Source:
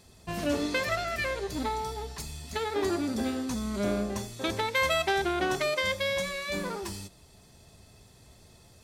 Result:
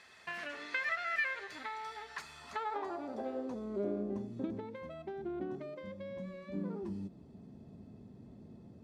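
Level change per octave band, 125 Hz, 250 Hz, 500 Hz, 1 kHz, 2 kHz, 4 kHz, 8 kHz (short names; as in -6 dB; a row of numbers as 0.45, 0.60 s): -9.5 dB, -8.5 dB, -10.5 dB, -9.5 dB, -7.0 dB, -17.5 dB, under -20 dB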